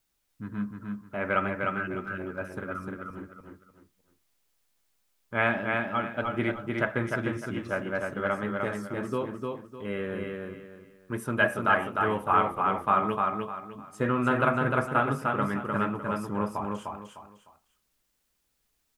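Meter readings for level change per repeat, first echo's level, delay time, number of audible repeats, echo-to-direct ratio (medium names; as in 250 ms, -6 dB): -10.5 dB, -3.5 dB, 303 ms, 3, -3.0 dB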